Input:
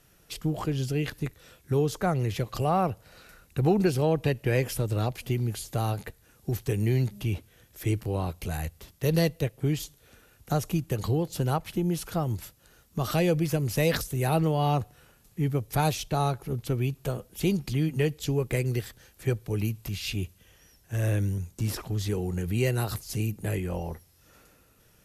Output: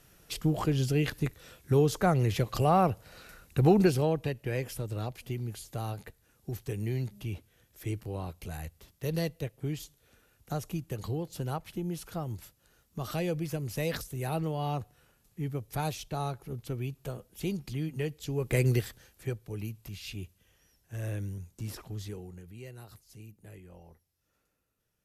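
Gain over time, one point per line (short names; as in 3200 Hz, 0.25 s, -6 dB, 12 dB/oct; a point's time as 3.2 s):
3.82 s +1 dB
4.33 s -7.5 dB
18.29 s -7.5 dB
18.66 s +3.5 dB
19.39 s -9 dB
22 s -9 dB
22.53 s -20 dB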